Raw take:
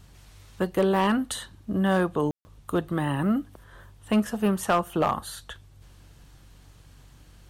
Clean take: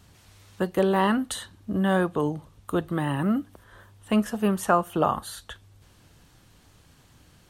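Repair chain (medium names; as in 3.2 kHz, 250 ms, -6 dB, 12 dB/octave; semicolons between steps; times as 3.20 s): clip repair -15 dBFS; de-hum 47.3 Hz, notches 3; room tone fill 2.31–2.45 s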